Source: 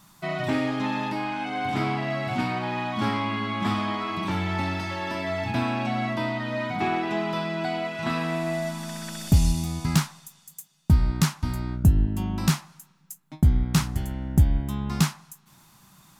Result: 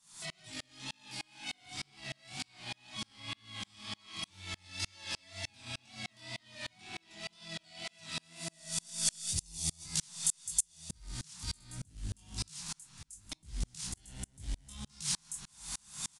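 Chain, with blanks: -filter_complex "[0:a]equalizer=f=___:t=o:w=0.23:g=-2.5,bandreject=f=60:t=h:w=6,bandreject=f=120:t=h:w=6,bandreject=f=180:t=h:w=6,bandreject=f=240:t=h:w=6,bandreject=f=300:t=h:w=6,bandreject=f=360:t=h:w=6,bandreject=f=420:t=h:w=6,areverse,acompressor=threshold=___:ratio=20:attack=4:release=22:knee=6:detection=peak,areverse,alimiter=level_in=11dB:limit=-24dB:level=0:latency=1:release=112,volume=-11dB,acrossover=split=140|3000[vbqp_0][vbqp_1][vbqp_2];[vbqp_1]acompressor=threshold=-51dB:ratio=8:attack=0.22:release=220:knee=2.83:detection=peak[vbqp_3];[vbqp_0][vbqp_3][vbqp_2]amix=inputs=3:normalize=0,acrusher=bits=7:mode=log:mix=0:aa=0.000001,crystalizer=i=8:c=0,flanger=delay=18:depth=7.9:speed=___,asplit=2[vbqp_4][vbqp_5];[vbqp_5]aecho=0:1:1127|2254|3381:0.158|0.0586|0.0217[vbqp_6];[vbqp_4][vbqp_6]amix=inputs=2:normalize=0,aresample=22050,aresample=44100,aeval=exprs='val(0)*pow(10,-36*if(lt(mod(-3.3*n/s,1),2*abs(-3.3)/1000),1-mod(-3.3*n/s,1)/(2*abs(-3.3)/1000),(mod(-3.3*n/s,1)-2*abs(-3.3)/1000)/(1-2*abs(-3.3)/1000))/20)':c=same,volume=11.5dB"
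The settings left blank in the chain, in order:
1.2k, -34dB, 2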